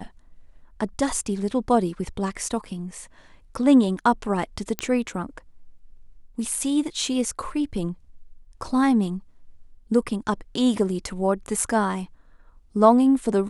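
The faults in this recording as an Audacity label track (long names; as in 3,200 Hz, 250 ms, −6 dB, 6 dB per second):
4.790000	4.790000	click −8 dBFS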